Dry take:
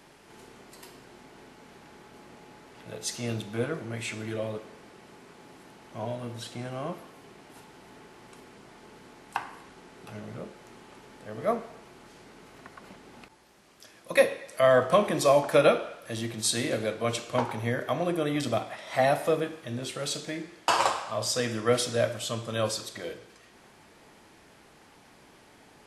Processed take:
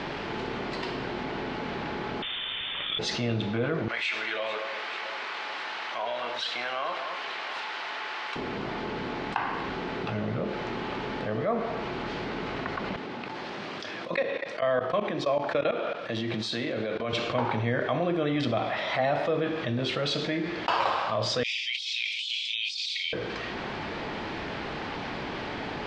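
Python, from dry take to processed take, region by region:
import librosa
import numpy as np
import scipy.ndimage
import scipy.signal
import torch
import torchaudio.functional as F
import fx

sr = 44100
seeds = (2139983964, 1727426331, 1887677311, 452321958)

y = fx.chain(x, sr, fx.steep_highpass(hz=270.0, slope=36),
    fx.freq_invert(carrier_hz=3900), at=(2.22, 2.99))
y = fx.chain(y, sr, fx.highpass(hz=1100.0, slope=12),
    fx.echo_alternate(ms=220, hz=1900.0, feedback_pct=61, wet_db=-13.5), at=(3.88, 8.36))
y = fx.chain(y, sr, fx.highpass(hz=130.0, slope=12),
    fx.level_steps(step_db=21), at=(12.96, 17.13))
y = fx.chain(y, sr, fx.steep_highpass(hz=2200.0, slope=96),
    fx.over_compress(threshold_db=-44.0, ratio=-1.0), at=(21.43, 23.13))
y = scipy.signal.sosfilt(scipy.signal.butter(4, 4200.0, 'lowpass', fs=sr, output='sos'), y)
y = fx.env_flatten(y, sr, amount_pct=70)
y = y * librosa.db_to_amplitude(-4.0)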